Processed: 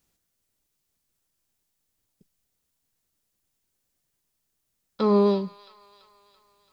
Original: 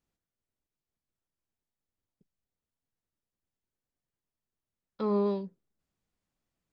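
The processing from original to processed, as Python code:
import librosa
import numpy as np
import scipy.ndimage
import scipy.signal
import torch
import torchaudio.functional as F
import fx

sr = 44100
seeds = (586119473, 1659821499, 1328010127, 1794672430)

p1 = fx.high_shelf(x, sr, hz=3600.0, db=10.5)
p2 = p1 + fx.echo_wet_highpass(p1, sr, ms=335, feedback_pct=57, hz=1500.0, wet_db=-13.5, dry=0)
y = F.gain(torch.from_numpy(p2), 8.0).numpy()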